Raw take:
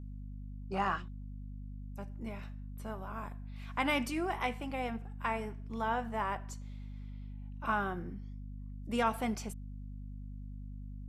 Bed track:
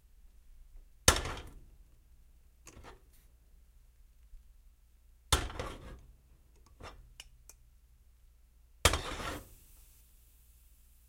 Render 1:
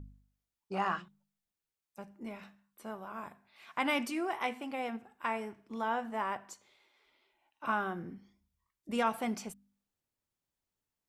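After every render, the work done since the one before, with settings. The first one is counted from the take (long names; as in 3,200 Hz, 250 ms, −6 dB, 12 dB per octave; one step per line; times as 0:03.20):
hum removal 50 Hz, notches 5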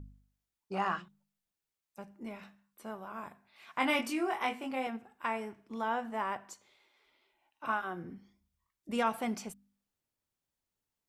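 0:03.78–0:04.87: double-tracking delay 23 ms −3.5 dB
0:07.67–0:08.10: notch comb filter 200 Hz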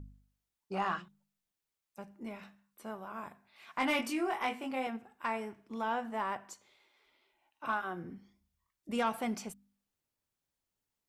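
soft clipping −21.5 dBFS, distortion −21 dB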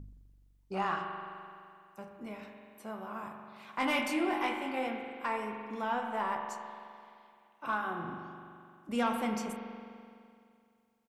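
double-tracking delay 29 ms −14 dB
spring reverb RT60 2.4 s, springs 42 ms, chirp 30 ms, DRR 3.5 dB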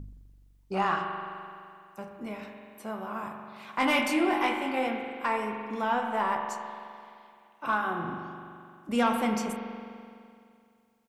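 level +5.5 dB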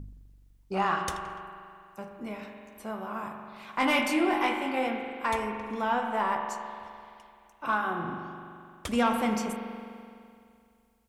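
mix in bed track −13 dB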